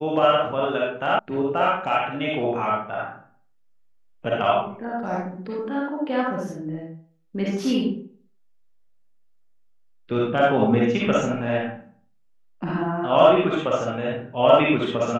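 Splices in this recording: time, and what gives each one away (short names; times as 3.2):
1.19 sound cut off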